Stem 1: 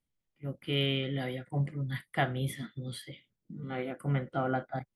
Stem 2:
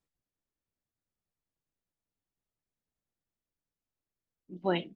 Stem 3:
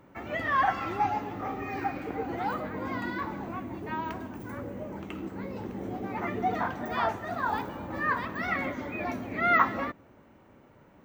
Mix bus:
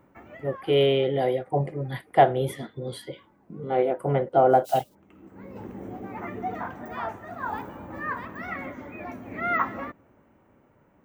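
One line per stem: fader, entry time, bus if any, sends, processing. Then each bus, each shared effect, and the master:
+2.0 dB, 0.00 s, no send, band shelf 580 Hz +13.5 dB
-2.0 dB, 0.00 s, no send, modulation noise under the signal 14 dB; steep high-pass 2800 Hz
-1.5 dB, 0.00 s, no send, bell 4300 Hz -9 dB 0.98 oct; tremolo saw down 0.54 Hz, depth 30%; auto duck -21 dB, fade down 0.75 s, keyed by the first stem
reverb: off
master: dry

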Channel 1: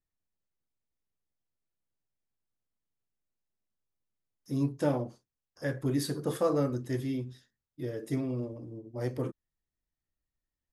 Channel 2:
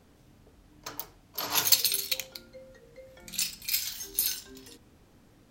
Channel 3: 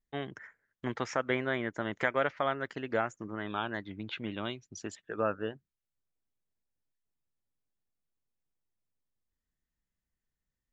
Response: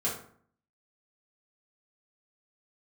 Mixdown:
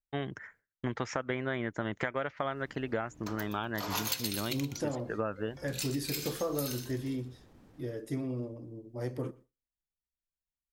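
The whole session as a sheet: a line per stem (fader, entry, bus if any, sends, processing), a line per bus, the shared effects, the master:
-2.0 dB, 0.00 s, no send, echo send -24 dB, dry
+0.5 dB, 2.40 s, no send, echo send -10 dB, high shelf 2400 Hz -8.5 dB
+2.0 dB, 0.00 s, no send, no echo send, low shelf 140 Hz +9 dB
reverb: off
echo: feedback echo 0.121 s, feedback 21%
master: gate with hold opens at -50 dBFS; compressor, threshold -29 dBFS, peak gain reduction 8.5 dB

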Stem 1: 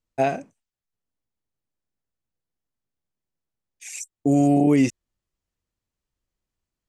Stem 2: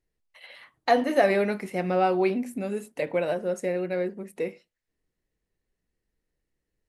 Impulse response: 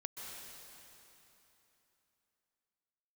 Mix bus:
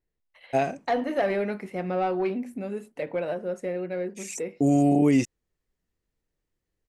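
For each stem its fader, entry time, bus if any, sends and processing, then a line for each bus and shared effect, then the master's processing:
-2.5 dB, 0.35 s, no send, dry
-2.0 dB, 0.00 s, no send, high shelf 4400 Hz -10 dB; soft clip -15 dBFS, distortion -18 dB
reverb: off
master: dry

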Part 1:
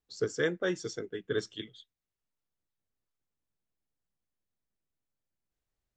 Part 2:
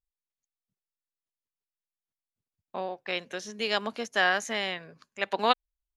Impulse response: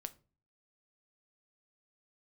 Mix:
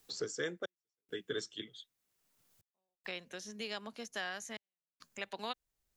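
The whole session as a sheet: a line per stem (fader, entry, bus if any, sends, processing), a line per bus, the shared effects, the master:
-5.0 dB, 0.00 s, no send, low shelf 85 Hz -8.5 dB
-17.5 dB, 0.00 s, no send, tone controls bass +6 dB, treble +2 dB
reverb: off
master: step gate "xxx..xxxx" 69 bpm -60 dB; high shelf 4200 Hz +10 dB; three-band squash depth 70%

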